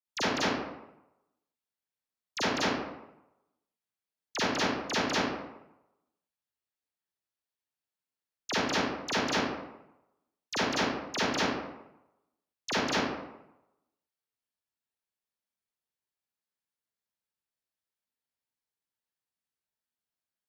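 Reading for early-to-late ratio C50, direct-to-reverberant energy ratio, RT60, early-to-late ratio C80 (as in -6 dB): -4.5 dB, -10.5 dB, 0.90 s, 1.0 dB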